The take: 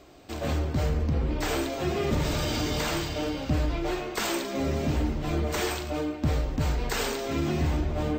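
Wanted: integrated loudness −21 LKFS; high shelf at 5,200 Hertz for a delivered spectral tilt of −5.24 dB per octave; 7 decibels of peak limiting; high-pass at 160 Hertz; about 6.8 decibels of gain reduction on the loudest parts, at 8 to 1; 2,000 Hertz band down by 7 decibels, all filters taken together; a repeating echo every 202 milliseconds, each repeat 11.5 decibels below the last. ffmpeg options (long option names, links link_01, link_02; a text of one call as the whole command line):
ffmpeg -i in.wav -af "highpass=160,equalizer=frequency=2000:width_type=o:gain=-8.5,highshelf=frequency=5200:gain=-4,acompressor=threshold=-32dB:ratio=8,alimiter=level_in=4.5dB:limit=-24dB:level=0:latency=1,volume=-4.5dB,aecho=1:1:202|404|606:0.266|0.0718|0.0194,volume=16.5dB" out.wav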